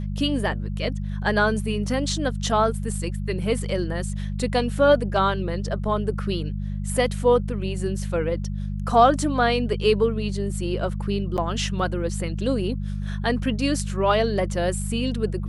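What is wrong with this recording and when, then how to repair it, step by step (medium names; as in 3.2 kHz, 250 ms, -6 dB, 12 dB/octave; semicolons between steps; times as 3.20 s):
hum 50 Hz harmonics 4 -28 dBFS
11.37–11.38 s: dropout 8.5 ms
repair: de-hum 50 Hz, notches 4; interpolate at 11.37 s, 8.5 ms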